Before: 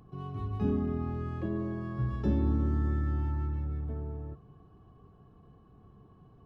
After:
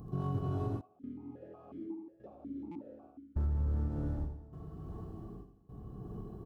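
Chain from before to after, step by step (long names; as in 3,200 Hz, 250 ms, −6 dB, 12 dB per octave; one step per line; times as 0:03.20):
speech leveller within 4 dB 0.5 s
hard clipping −30.5 dBFS, distortion −11 dB
parametric band 2,300 Hz −14.5 dB 2 octaves
feedback echo with a high-pass in the loop 292 ms, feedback 81%, high-pass 1,100 Hz, level −13 dB
gate pattern "xxx.....x" 116 BPM −24 dB
repeating echo 83 ms, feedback 41%, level −9.5 dB
reverb whose tail is shaped and stops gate 420 ms rising, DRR −4 dB
downward compressor, threshold −34 dBFS, peak gain reduction 8 dB
buffer that repeats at 0:02.71, samples 256, times 7
0:00.81–0:03.36: formant filter that steps through the vowels 5.5 Hz
level +4.5 dB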